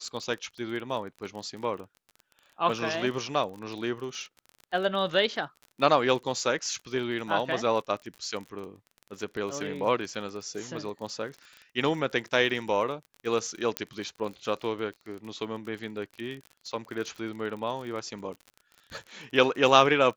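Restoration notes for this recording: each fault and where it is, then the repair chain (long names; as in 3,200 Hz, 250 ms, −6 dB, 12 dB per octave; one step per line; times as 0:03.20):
surface crackle 32 per second −36 dBFS
0:13.77: click −11 dBFS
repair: click removal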